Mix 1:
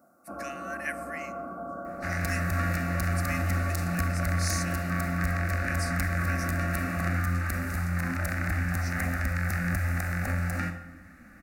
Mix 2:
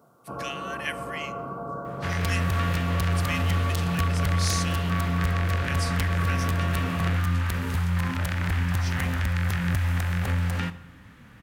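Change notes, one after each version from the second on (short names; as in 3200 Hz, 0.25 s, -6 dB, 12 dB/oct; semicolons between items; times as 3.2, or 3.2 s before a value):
second sound: send -9.0 dB; master: remove fixed phaser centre 650 Hz, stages 8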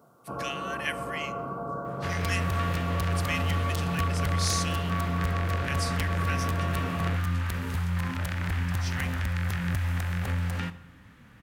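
second sound -3.5 dB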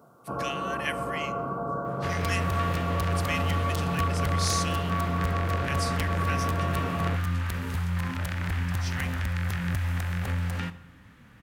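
first sound +3.0 dB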